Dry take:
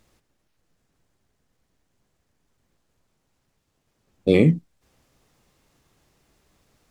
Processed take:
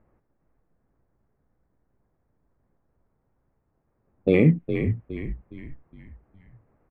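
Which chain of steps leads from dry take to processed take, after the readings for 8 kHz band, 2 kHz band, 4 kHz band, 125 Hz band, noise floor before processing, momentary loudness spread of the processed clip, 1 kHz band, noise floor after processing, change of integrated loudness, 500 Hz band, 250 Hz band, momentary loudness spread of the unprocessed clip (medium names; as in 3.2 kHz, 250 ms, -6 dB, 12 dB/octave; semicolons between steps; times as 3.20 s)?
no reading, +0.5 dB, -8.5 dB, +0.5 dB, -73 dBFS, 17 LU, -1.0 dB, -73 dBFS, -3.0 dB, -1.5 dB, -0.5 dB, 11 LU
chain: local Wiener filter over 9 samples; level-controlled noise filter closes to 1.1 kHz, open at -21 dBFS; resonant high shelf 3.3 kHz -12 dB, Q 1.5; peak limiter -7.5 dBFS, peak gain reduction 3 dB; on a send: frequency-shifting echo 413 ms, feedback 44%, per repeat -56 Hz, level -7.5 dB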